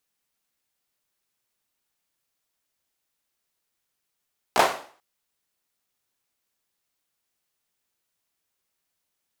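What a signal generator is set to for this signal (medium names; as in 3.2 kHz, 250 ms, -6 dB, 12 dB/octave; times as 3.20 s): hand clap length 0.44 s, bursts 3, apart 16 ms, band 730 Hz, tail 0.46 s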